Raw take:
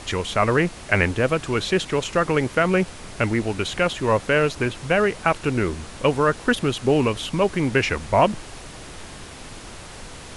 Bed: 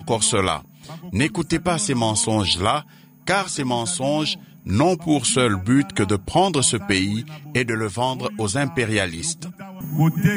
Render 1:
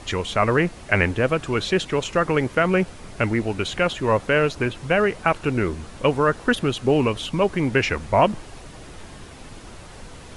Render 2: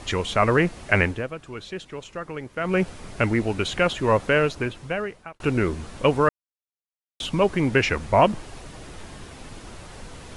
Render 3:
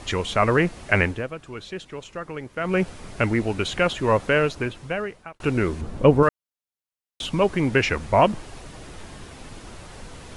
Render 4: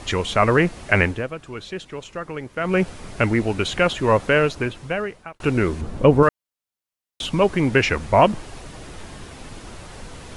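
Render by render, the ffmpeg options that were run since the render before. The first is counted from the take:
-af "afftdn=nr=6:nf=-40"
-filter_complex "[0:a]asplit=6[a][b][c][d][e][f];[a]atrim=end=1.28,asetpts=PTS-STARTPTS,afade=t=out:st=0.98:d=0.3:silence=0.223872[g];[b]atrim=start=1.28:end=2.55,asetpts=PTS-STARTPTS,volume=-13dB[h];[c]atrim=start=2.55:end=5.4,asetpts=PTS-STARTPTS,afade=t=in:d=0.3:silence=0.223872,afade=t=out:st=1.72:d=1.13[i];[d]atrim=start=5.4:end=6.29,asetpts=PTS-STARTPTS,afade=t=in:d=0.004:c=hsin,afade=t=out:st=0.886:d=0.004:c=hsin[j];[e]atrim=start=6.29:end=7.2,asetpts=PTS-STARTPTS,volume=0[k];[f]atrim=start=7.2,asetpts=PTS-STARTPTS,afade=t=in:d=0.004:c=hsin[l];[g][h][i][j][k][l]concat=n=6:v=0:a=1"
-filter_complex "[0:a]asettb=1/sr,asplit=3[a][b][c];[a]atrim=end=5.814[d];[b]atrim=start=5.81:end=6.23,asetpts=PTS-STARTPTS,afade=t=in:d=0.004:c=qsin,afade=t=out:st=0.416:d=0.004:c=qsin,tiltshelf=f=970:g=7.5[e];[c]atrim=start=6.226[f];[d][e]acrossfade=d=0.004:c1=hsin:c2=qsin[g];[g][f]acrossfade=d=0.004:c1=qsin:c2=hsin"
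-af "volume=2.5dB,alimiter=limit=-2dB:level=0:latency=1"

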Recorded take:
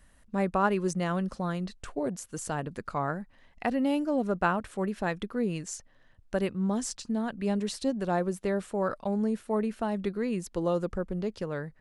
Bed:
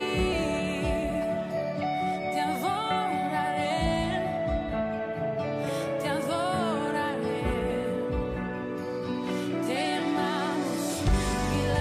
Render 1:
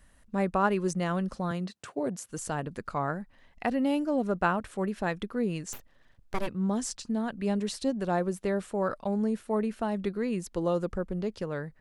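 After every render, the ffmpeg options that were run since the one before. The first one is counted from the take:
-filter_complex "[0:a]asettb=1/sr,asplit=3[a][b][c];[a]atrim=end=1.514[d];[b]atrim=start=1.51:end=2.29,asetpts=PTS-STARTPTS,afade=t=in:d=0.004:c=qsin,afade=t=out:st=0.776:d=0.004:c=qsin,highpass=f=110:w=0.5412,highpass=f=110:w=1.3066[e];[c]atrim=start=2.286[f];[d][e]acrossfade=d=0.004:c1=hsin:c2=qsin[g];[g][f]acrossfade=d=0.004:c1=qsin:c2=hsin,asplit=3[h][i][j];[h]afade=t=out:st=5.72:d=0.02[k];[i]aeval=exprs='abs(val(0))':c=same,afade=t=in:st=5.72:d=0.02,afade=t=out:st=6.46:d=0.02[l];[j]afade=t=in:st=6.46:d=0.02[m];[k][l][m]amix=inputs=3:normalize=0"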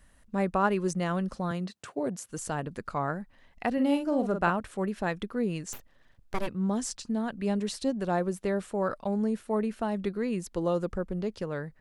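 -filter_complex "[0:a]asettb=1/sr,asplit=3[a][b][c];[a]atrim=end=3.734[d];[b]atrim=start=3.73:end=4.5,asetpts=PTS-STARTPTS,afade=t=in:d=0.004:c=qsin,afade=t=out:st=0.766:d=0.004:c=qsin,asplit=2[e][f];[f]adelay=46,volume=-7dB[g];[e][g]amix=inputs=2:normalize=0,atrim=end_sample=33957[h];[c]atrim=start=4.496[i];[d][h]acrossfade=d=0.004:c1=hsin:c2=qsin[j];[j][i]acrossfade=d=0.004:c1=qsin:c2=hsin"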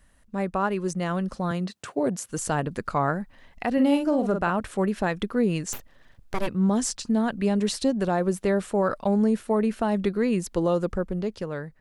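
-af "dynaudnorm=f=420:g=7:m=7dB,alimiter=limit=-13.5dB:level=0:latency=1:release=124"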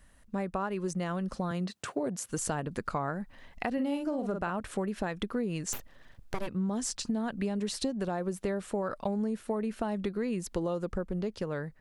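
-af "acompressor=threshold=-29dB:ratio=6"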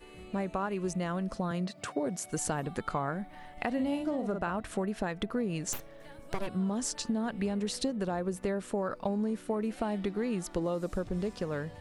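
-filter_complex "[1:a]volume=-23dB[a];[0:a][a]amix=inputs=2:normalize=0"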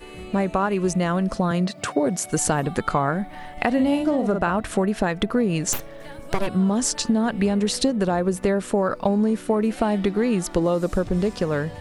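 -af "volume=11dB"

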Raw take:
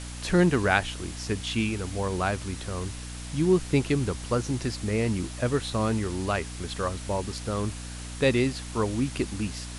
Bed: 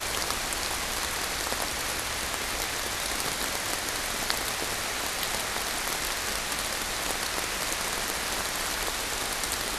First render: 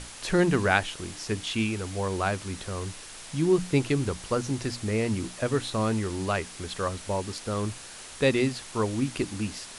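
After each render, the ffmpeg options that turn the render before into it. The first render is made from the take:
-af "bandreject=f=60:t=h:w=6,bandreject=f=120:t=h:w=6,bandreject=f=180:t=h:w=6,bandreject=f=240:t=h:w=6,bandreject=f=300:t=h:w=6"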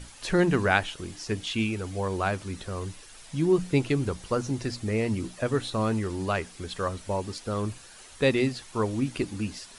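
-af "afftdn=nr=9:nf=-44"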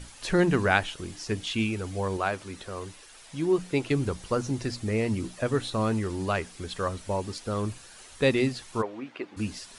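-filter_complex "[0:a]asettb=1/sr,asplit=3[a][b][c];[a]atrim=end=2.174[d];[b]atrim=start=2.17:end=3.91,asetpts=PTS-STARTPTS,afade=t=in:d=0.004:c=qsin,afade=t=out:st=1.736:d=0.004:c=qsin,bass=f=250:g=-8,treble=f=4k:g=-2[e];[c]atrim=start=3.906[f];[d][e]acrossfade=d=0.004:c1=hsin:c2=qsin[g];[g][f]acrossfade=d=0.004:c1=qsin:c2=hsin,asplit=3[h][i][j];[h]afade=t=out:st=8.81:d=0.02[k];[i]highpass=480,lowpass=2.2k,afade=t=in:st=8.81:d=0.02,afade=t=out:st=9.36:d=0.02[l];[j]afade=t=in:st=9.36:d=0.02[m];[k][l][m]amix=inputs=3:normalize=0"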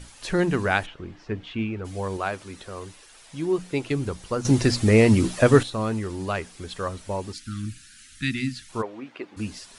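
-filter_complex "[0:a]asplit=3[a][b][c];[a]afade=t=out:st=0.85:d=0.02[d];[b]lowpass=2.1k,afade=t=in:st=0.85:d=0.02,afade=t=out:st=1.84:d=0.02[e];[c]afade=t=in:st=1.84:d=0.02[f];[d][e][f]amix=inputs=3:normalize=0,asplit=3[g][h][i];[g]afade=t=out:st=7.32:d=0.02[j];[h]asuperstop=centerf=650:order=12:qfactor=0.6,afade=t=in:st=7.32:d=0.02,afade=t=out:st=8.68:d=0.02[k];[i]afade=t=in:st=8.68:d=0.02[l];[j][k][l]amix=inputs=3:normalize=0,asplit=3[m][n][o];[m]atrim=end=4.452[p];[n]atrim=start=4.448:end=5.632,asetpts=PTS-STARTPTS,volume=11dB[q];[o]atrim=start=5.628[r];[p][q]acrossfade=d=0.004:c1=hsin:c2=hsin[s];[s][r]acrossfade=d=0.004:c1=hsin:c2=hsin"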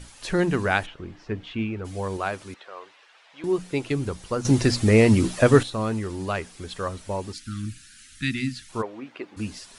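-filter_complex "[0:a]asettb=1/sr,asplit=3[a][b][c];[a]atrim=end=2.544[d];[b]atrim=start=2.54:end=3.44,asetpts=PTS-STARTPTS,afade=t=in:d=0.004:c=qsin,afade=t=out:st=0.896:d=0.004:c=qsin,asuperpass=centerf=1400:order=4:qfactor=0.51[e];[c]atrim=start=3.436[f];[d][e]acrossfade=d=0.004:c1=hsin:c2=qsin[g];[g][f]acrossfade=d=0.004:c1=qsin:c2=hsin"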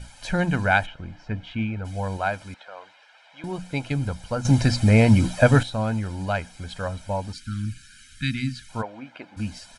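-af "highshelf=f=5.1k:g=-6.5,aecho=1:1:1.3:0.75"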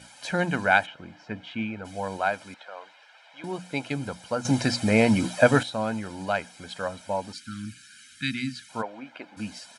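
-af "highpass=220"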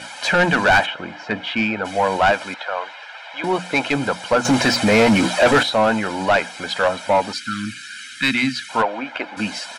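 -filter_complex "[0:a]asplit=2[a][b];[b]highpass=f=720:p=1,volume=26dB,asoftclip=type=tanh:threshold=-3dB[c];[a][c]amix=inputs=2:normalize=0,lowpass=f=2.4k:p=1,volume=-6dB,asoftclip=type=tanh:threshold=-5.5dB"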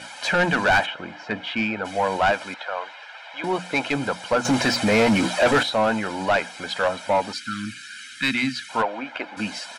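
-af "volume=-4dB"

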